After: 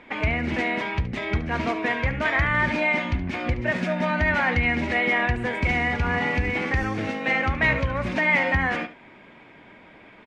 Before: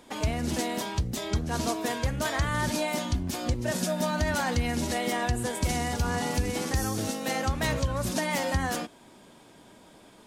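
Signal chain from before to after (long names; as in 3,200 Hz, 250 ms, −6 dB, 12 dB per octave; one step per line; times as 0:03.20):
low-pass with resonance 2,200 Hz, resonance Q 4.4
single-tap delay 72 ms −14 dB
level +2.5 dB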